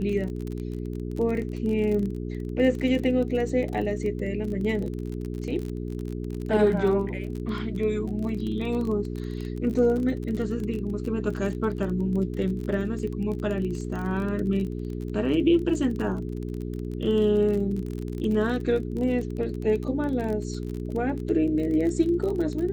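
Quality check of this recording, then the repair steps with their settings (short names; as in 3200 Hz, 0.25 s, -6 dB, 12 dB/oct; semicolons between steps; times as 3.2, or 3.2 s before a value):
crackle 31/s -31 dBFS
hum 60 Hz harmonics 7 -32 dBFS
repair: de-click; de-hum 60 Hz, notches 7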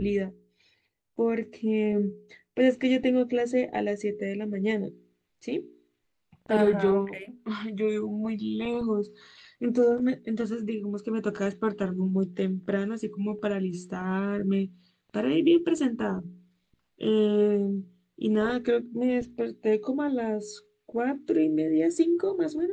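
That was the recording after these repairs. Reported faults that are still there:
none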